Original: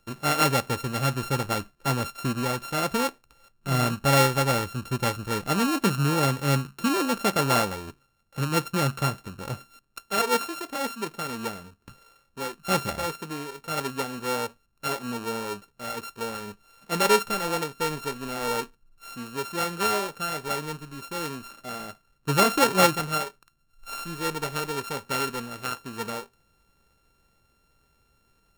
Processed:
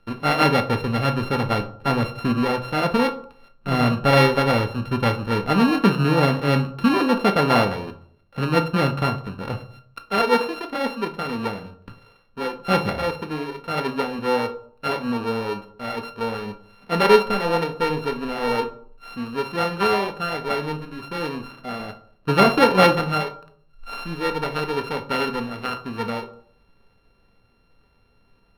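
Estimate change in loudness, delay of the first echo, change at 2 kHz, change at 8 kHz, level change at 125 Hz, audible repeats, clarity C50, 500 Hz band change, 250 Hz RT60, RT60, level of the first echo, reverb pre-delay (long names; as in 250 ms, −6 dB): +4.5 dB, no echo audible, +4.5 dB, −11.0 dB, +4.5 dB, no echo audible, 14.5 dB, +7.0 dB, 0.65 s, 0.60 s, no echo audible, 4 ms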